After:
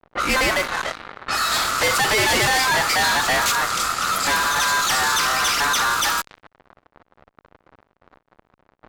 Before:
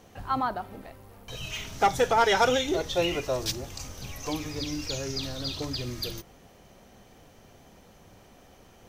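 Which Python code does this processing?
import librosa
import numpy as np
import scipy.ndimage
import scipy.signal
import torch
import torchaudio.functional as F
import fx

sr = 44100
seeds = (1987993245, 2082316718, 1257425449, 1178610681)

y = x * np.sin(2.0 * np.pi * 1300.0 * np.arange(len(x)) / sr)
y = fx.fuzz(y, sr, gain_db=45.0, gate_db=-48.0)
y = fx.env_lowpass(y, sr, base_hz=950.0, full_db=-14.5)
y = F.gain(torch.from_numpy(y), -3.5).numpy()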